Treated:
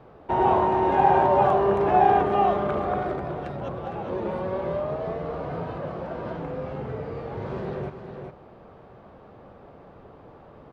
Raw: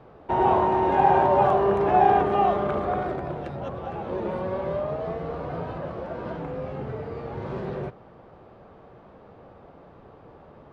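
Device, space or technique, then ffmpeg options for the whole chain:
ducked delay: -filter_complex "[0:a]asplit=3[link_01][link_02][link_03];[link_02]adelay=408,volume=-6dB[link_04];[link_03]apad=whole_len=491117[link_05];[link_04][link_05]sidechaincompress=threshold=-31dB:ratio=8:attack=34:release=1040[link_06];[link_01][link_06]amix=inputs=2:normalize=0"

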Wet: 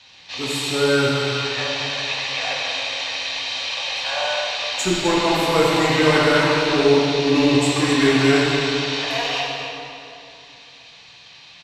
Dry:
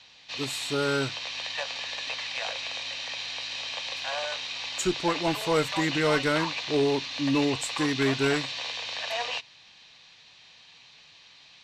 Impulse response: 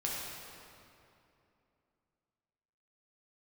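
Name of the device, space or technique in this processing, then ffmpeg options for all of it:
cave: -filter_complex "[0:a]aecho=1:1:257:0.282[link_01];[1:a]atrim=start_sample=2205[link_02];[link_01][link_02]afir=irnorm=-1:irlink=0,volume=4.5dB"

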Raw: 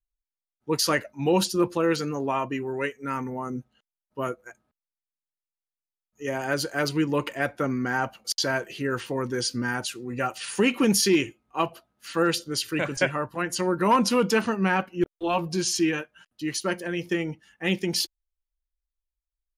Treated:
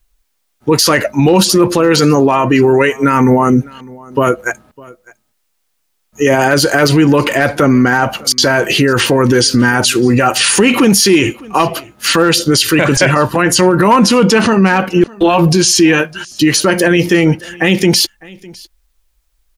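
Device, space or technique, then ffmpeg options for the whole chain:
loud club master: -filter_complex "[0:a]asettb=1/sr,asplit=3[link_01][link_02][link_03];[link_01]atrim=end=14.074[link_04];[link_02]atrim=start=14.07:end=14.72,asetpts=PTS-STARTPTS,afade=type=in:duration=0.004:curve=qsin,afade=type=out:start_time=0.646:duration=0.004:curve=qsin,lowpass=9500[link_05];[link_03]atrim=start=14.716[link_06];[link_04][link_05]acrossfade=duration=0.004:curve1=hsin:curve2=qsin[link_07];[link_07][link_06]acrossfade=duration=0.004:curve1=qsin:curve2=hsin,acompressor=threshold=-27dB:ratio=1.5,asoftclip=type=hard:threshold=-17dB,alimiter=level_in=28dB:limit=-1dB:release=50:level=0:latency=1,aecho=1:1:605:0.0668,volume=-1dB"

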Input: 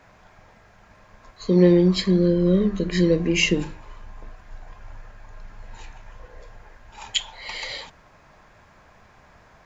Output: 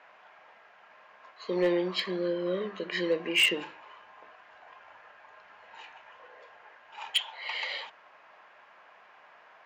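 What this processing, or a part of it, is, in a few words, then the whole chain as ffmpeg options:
megaphone: -af "highpass=650,lowpass=2900,equalizer=frequency=2900:width_type=o:width=0.24:gain=6.5,asoftclip=type=hard:threshold=-18dB"

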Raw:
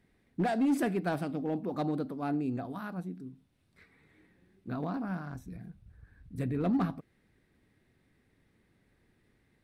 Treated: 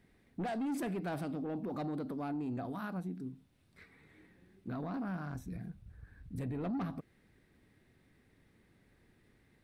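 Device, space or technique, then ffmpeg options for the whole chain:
soft clipper into limiter: -af "asoftclip=type=tanh:threshold=-27dB,alimiter=level_in=10.5dB:limit=-24dB:level=0:latency=1:release=76,volume=-10.5dB,volume=2dB"

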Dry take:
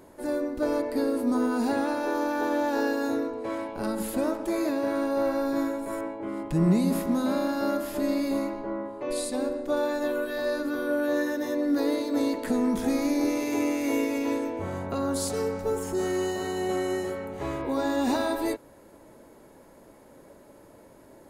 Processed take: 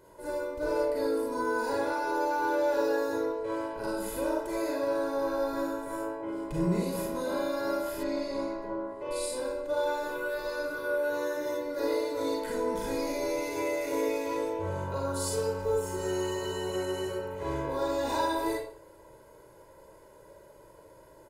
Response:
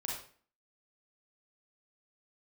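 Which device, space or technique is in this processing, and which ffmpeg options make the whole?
microphone above a desk: -filter_complex "[0:a]aecho=1:1:2:0.78[link_01];[1:a]atrim=start_sample=2205[link_02];[link_01][link_02]afir=irnorm=-1:irlink=0,asettb=1/sr,asplit=3[link_03][link_04][link_05];[link_03]atrim=end=8.034[link_06];[link_04]atrim=start=8.03:end=8.62,asetpts=PTS-STARTPTS,afade=type=in:duration=0.004:curve=qsin,afade=type=out:start_time=0.586:duration=0.004:curve=qsin,lowpass=5900[link_07];[link_05]atrim=start=8.616[link_08];[link_06][link_07]acrossfade=duration=0.004:curve1=hsin:curve2=qsin[link_09];[link_09][link_08]acrossfade=duration=0.004:curve1=qsin:curve2=hsin,volume=-5dB"

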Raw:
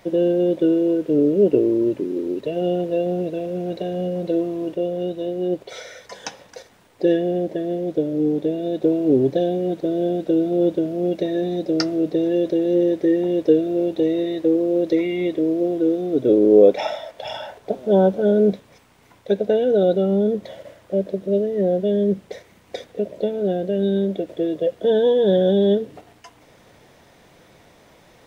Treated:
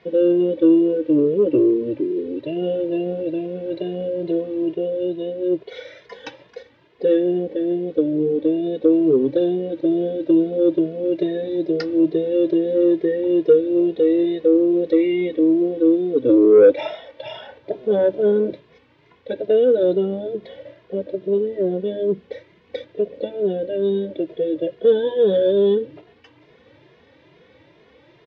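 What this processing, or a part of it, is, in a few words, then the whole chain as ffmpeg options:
barber-pole flanger into a guitar amplifier: -filter_complex "[0:a]asplit=2[link_01][link_02];[link_02]adelay=2.4,afreqshift=2.3[link_03];[link_01][link_03]amix=inputs=2:normalize=1,asoftclip=type=tanh:threshold=-9dB,highpass=76,equalizer=frequency=200:width_type=q:width=4:gain=-7,equalizer=frequency=320:width_type=q:width=4:gain=4,equalizer=frequency=480:width_type=q:width=4:gain=4,equalizer=frequency=730:width_type=q:width=4:gain=-9,equalizer=frequency=1300:width_type=q:width=4:gain=-5,lowpass=frequency=3900:width=0.5412,lowpass=frequency=3900:width=1.3066,volume=2.5dB"

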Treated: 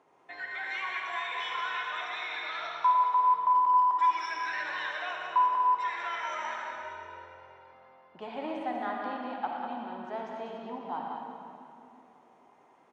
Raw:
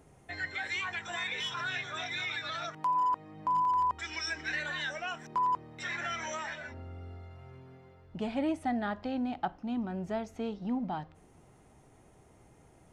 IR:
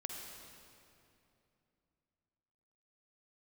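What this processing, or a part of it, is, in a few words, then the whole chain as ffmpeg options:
station announcement: -filter_complex "[0:a]highpass=410,lowpass=3900,equalizer=frequency=1000:width_type=o:width=0.4:gain=10,aecho=1:1:116.6|195.3:0.316|0.501[link_01];[1:a]atrim=start_sample=2205[link_02];[link_01][link_02]afir=irnorm=-1:irlink=0,asettb=1/sr,asplit=3[link_03][link_04][link_05];[link_03]atrim=end=6.834[link_06];[link_04]atrim=start=6.83:end=7.73,asetpts=PTS-STARTPTS,afade=type=in:duration=0.004:curve=qsin,afade=type=out:start_time=0.896:duration=0.004:curve=qsin,aecho=1:1:2.1:0.55,atrim=end_sample=39690[link_07];[link_05]atrim=start=7.726[link_08];[link_06][link_07]acrossfade=duration=0.004:curve1=hsin:curve2=qsin[link_09];[link_09][link_08]acrossfade=duration=0.004:curve1=qsin:curve2=hsin"

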